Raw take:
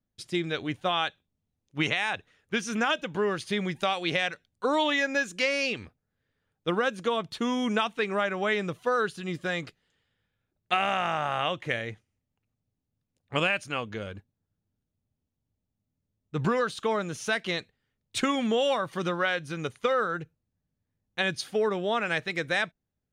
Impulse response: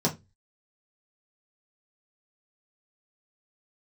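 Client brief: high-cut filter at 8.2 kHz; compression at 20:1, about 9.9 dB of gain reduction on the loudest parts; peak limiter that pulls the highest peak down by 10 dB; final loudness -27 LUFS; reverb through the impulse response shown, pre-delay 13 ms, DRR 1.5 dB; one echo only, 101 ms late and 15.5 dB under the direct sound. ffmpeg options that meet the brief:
-filter_complex "[0:a]lowpass=8200,acompressor=threshold=0.0282:ratio=20,alimiter=level_in=1.78:limit=0.0631:level=0:latency=1,volume=0.562,aecho=1:1:101:0.168,asplit=2[s0][s1];[1:a]atrim=start_sample=2205,adelay=13[s2];[s1][s2]afir=irnorm=-1:irlink=0,volume=0.266[s3];[s0][s3]amix=inputs=2:normalize=0,volume=2.11"

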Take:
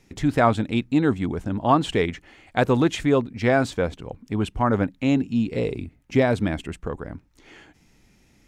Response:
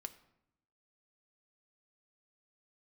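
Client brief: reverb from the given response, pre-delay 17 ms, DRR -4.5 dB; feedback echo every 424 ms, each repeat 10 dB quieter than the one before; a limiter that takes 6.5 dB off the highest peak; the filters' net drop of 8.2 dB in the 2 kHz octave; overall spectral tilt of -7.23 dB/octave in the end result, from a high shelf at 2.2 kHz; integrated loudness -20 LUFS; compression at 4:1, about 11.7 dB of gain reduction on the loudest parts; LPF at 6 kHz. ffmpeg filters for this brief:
-filter_complex "[0:a]lowpass=6000,equalizer=f=2000:t=o:g=-6.5,highshelf=f=2200:g=-8.5,acompressor=threshold=0.0355:ratio=4,alimiter=limit=0.0631:level=0:latency=1,aecho=1:1:424|848|1272|1696:0.316|0.101|0.0324|0.0104,asplit=2[s0][s1];[1:a]atrim=start_sample=2205,adelay=17[s2];[s1][s2]afir=irnorm=-1:irlink=0,volume=2.66[s3];[s0][s3]amix=inputs=2:normalize=0,volume=2.82"

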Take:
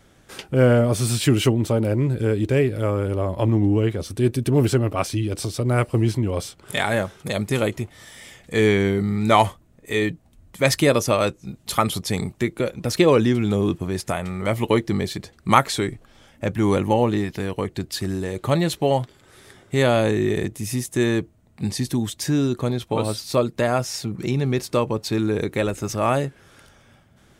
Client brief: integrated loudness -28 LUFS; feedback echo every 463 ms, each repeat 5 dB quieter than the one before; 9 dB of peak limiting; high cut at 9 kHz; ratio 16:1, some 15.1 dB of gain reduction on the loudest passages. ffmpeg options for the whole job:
-af "lowpass=9000,acompressor=threshold=0.0501:ratio=16,alimiter=limit=0.075:level=0:latency=1,aecho=1:1:463|926|1389|1852|2315|2778|3241:0.562|0.315|0.176|0.0988|0.0553|0.031|0.0173,volume=1.5"

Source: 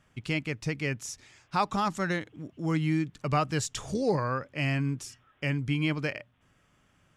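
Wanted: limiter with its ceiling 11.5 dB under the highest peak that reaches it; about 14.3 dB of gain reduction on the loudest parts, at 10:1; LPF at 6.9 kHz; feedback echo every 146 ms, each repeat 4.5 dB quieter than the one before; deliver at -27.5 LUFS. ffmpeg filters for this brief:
-af "lowpass=6900,acompressor=threshold=0.0158:ratio=10,alimiter=level_in=2.51:limit=0.0631:level=0:latency=1,volume=0.398,aecho=1:1:146|292|438|584|730|876|1022|1168|1314:0.596|0.357|0.214|0.129|0.0772|0.0463|0.0278|0.0167|0.01,volume=5.01"

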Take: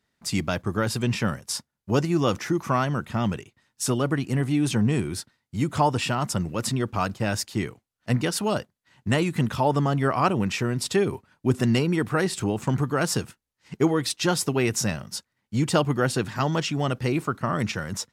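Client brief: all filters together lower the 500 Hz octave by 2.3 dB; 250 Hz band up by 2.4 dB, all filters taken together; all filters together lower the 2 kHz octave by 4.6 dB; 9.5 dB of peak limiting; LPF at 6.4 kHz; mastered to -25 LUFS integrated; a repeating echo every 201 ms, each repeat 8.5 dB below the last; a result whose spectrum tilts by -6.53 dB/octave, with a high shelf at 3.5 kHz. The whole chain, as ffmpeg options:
-af "lowpass=6400,equalizer=f=250:t=o:g=4.5,equalizer=f=500:t=o:g=-4.5,equalizer=f=2000:t=o:g=-4.5,highshelf=f=3500:g=-5.5,alimiter=limit=0.141:level=0:latency=1,aecho=1:1:201|402|603|804:0.376|0.143|0.0543|0.0206,volume=1.33"

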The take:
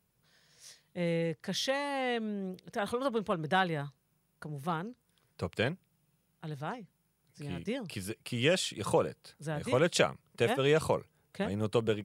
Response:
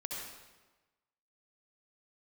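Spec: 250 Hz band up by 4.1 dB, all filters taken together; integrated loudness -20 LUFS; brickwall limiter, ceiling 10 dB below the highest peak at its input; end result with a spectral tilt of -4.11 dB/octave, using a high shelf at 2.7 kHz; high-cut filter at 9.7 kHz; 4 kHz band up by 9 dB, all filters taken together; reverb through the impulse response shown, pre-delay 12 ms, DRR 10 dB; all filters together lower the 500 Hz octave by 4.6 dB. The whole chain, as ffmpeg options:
-filter_complex "[0:a]lowpass=9700,equalizer=f=250:t=o:g=7.5,equalizer=f=500:t=o:g=-7.5,highshelf=f=2700:g=6.5,equalizer=f=4000:t=o:g=6.5,alimiter=limit=0.126:level=0:latency=1,asplit=2[s0][s1];[1:a]atrim=start_sample=2205,adelay=12[s2];[s1][s2]afir=irnorm=-1:irlink=0,volume=0.282[s3];[s0][s3]amix=inputs=2:normalize=0,volume=3.98"

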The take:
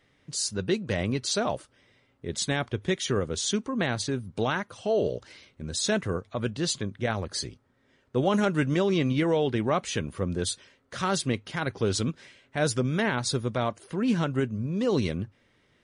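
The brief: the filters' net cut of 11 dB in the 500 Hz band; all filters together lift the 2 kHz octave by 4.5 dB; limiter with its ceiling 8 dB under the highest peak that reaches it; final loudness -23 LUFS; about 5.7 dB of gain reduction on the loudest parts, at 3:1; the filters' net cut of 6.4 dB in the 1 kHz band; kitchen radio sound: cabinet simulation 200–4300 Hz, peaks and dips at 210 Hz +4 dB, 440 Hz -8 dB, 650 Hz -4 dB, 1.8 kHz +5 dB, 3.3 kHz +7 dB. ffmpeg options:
-af "equalizer=f=500:t=o:g=-6.5,equalizer=f=1000:t=o:g=-8,equalizer=f=2000:t=o:g=5,acompressor=threshold=0.0316:ratio=3,alimiter=level_in=1.41:limit=0.0631:level=0:latency=1,volume=0.708,highpass=200,equalizer=f=210:t=q:w=4:g=4,equalizer=f=440:t=q:w=4:g=-8,equalizer=f=650:t=q:w=4:g=-4,equalizer=f=1800:t=q:w=4:g=5,equalizer=f=3300:t=q:w=4:g=7,lowpass=f=4300:w=0.5412,lowpass=f=4300:w=1.3066,volume=5.62"

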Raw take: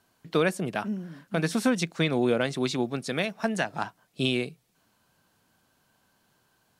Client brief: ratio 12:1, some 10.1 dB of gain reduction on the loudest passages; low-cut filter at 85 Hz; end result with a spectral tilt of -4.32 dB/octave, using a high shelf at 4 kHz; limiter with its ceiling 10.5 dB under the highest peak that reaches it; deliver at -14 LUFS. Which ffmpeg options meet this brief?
-af "highpass=85,highshelf=f=4000:g=5,acompressor=threshold=0.0355:ratio=12,volume=14.1,alimiter=limit=0.794:level=0:latency=1"

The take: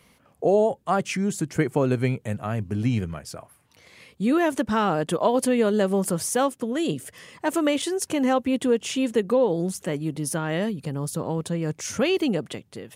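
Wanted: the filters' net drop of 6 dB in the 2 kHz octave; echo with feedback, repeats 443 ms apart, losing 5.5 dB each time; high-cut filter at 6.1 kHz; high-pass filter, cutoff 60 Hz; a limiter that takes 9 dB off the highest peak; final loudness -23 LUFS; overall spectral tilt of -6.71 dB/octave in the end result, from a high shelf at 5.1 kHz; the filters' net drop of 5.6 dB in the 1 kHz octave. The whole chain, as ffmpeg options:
-af "highpass=60,lowpass=6100,equalizer=f=1000:t=o:g=-6.5,equalizer=f=2000:t=o:g=-4.5,highshelf=f=5100:g=-7.5,alimiter=limit=0.112:level=0:latency=1,aecho=1:1:443|886|1329|1772|2215|2658|3101:0.531|0.281|0.149|0.079|0.0419|0.0222|0.0118,volume=1.68"

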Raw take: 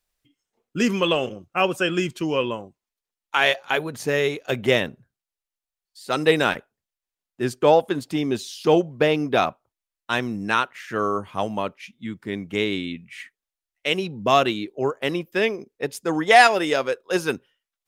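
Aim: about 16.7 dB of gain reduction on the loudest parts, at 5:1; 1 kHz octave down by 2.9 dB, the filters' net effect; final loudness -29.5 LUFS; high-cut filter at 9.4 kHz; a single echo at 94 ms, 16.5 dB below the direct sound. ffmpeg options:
-af "lowpass=9400,equalizer=f=1000:t=o:g=-4.5,acompressor=threshold=0.0282:ratio=5,aecho=1:1:94:0.15,volume=1.88"

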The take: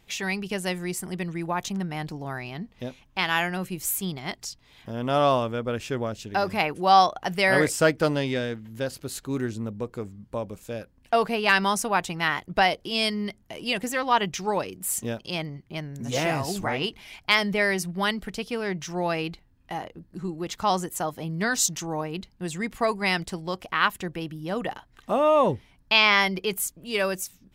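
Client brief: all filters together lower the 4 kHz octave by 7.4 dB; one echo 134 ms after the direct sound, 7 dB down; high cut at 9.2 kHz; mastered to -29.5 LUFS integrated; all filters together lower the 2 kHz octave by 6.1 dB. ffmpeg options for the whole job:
-af "lowpass=9200,equalizer=f=2000:t=o:g=-5.5,equalizer=f=4000:t=o:g=-8,aecho=1:1:134:0.447,volume=0.794"

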